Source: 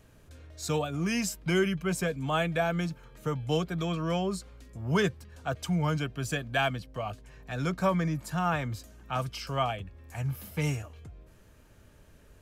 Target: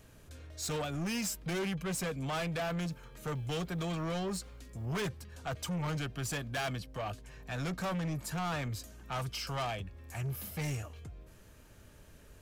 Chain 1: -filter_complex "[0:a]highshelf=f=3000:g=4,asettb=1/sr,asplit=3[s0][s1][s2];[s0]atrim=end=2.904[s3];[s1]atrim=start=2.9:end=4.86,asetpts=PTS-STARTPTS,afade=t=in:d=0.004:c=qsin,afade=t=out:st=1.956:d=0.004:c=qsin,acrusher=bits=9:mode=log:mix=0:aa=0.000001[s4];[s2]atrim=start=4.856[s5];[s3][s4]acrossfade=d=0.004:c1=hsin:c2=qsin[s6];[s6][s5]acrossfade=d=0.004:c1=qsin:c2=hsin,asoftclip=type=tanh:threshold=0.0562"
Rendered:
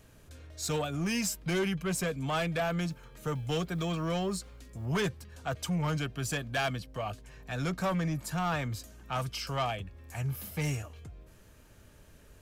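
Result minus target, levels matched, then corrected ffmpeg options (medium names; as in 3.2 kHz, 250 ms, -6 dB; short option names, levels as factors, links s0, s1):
saturation: distortion -6 dB
-filter_complex "[0:a]highshelf=f=3000:g=4,asettb=1/sr,asplit=3[s0][s1][s2];[s0]atrim=end=2.904[s3];[s1]atrim=start=2.9:end=4.86,asetpts=PTS-STARTPTS,afade=t=in:d=0.004:c=qsin,afade=t=out:st=1.956:d=0.004:c=qsin,acrusher=bits=9:mode=log:mix=0:aa=0.000001[s4];[s2]atrim=start=4.856[s5];[s3][s4]acrossfade=d=0.004:c1=hsin:c2=qsin[s6];[s6][s5]acrossfade=d=0.004:c1=qsin:c2=hsin,asoftclip=type=tanh:threshold=0.0251"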